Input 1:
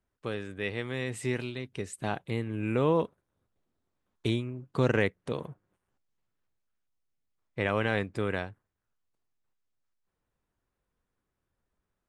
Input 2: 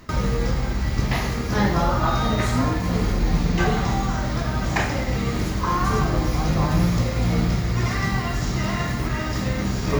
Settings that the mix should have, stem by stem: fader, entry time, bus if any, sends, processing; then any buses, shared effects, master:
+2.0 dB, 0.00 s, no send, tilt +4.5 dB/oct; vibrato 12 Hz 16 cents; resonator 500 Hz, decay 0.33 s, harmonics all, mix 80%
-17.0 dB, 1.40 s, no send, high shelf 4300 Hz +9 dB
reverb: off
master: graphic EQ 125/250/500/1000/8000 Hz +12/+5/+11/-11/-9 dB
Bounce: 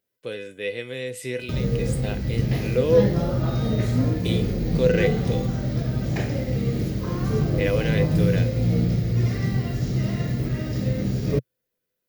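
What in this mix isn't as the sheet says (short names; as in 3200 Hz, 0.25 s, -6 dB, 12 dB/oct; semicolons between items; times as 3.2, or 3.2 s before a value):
stem 1 +2.0 dB -> +11.0 dB; stem 2 -17.0 dB -> -9.5 dB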